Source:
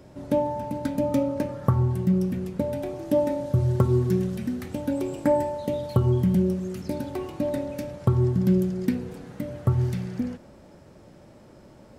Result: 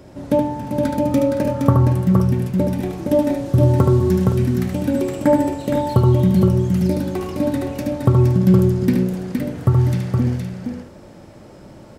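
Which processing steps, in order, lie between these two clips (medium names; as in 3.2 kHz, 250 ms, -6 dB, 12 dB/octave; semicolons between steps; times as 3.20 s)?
multi-tap echo 74/467/517 ms -5/-4.5/-11.5 dB; trim +6 dB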